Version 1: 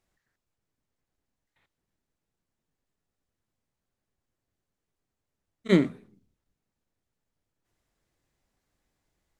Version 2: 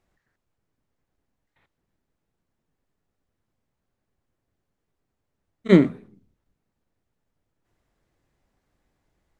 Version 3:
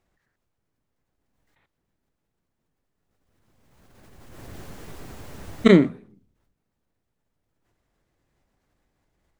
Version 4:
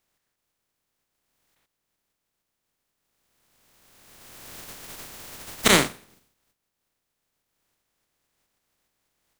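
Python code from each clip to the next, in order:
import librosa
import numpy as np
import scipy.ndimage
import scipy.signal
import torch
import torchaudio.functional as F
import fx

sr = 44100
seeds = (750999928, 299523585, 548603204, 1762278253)

y1 = fx.high_shelf(x, sr, hz=3000.0, db=-9.5)
y1 = F.gain(torch.from_numpy(y1), 6.5).numpy()
y2 = fx.pre_swell(y1, sr, db_per_s=24.0)
y2 = F.gain(torch.from_numpy(y2), -1.0).numpy()
y3 = fx.spec_flatten(y2, sr, power=0.31)
y3 = F.gain(torch.from_numpy(y3), -4.0).numpy()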